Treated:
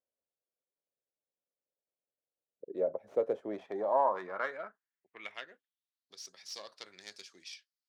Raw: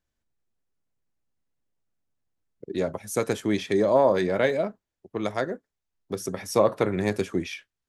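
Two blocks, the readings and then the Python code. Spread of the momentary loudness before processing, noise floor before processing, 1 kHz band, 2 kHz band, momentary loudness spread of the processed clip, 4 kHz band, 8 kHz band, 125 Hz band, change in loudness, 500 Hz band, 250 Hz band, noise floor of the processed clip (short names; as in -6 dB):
13 LU, -85 dBFS, -5.0 dB, -10.5 dB, 19 LU, -9.0 dB, under -10 dB, under -25 dB, -9.0 dB, -11.5 dB, -19.5 dB, under -85 dBFS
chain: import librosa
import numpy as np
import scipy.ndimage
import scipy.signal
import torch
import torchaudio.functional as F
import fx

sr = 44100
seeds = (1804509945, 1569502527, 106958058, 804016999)

y = fx.tracing_dist(x, sr, depth_ms=0.092)
y = fx.filter_sweep_bandpass(y, sr, from_hz=540.0, to_hz=4800.0, start_s=3.33, end_s=6.21, q=3.9)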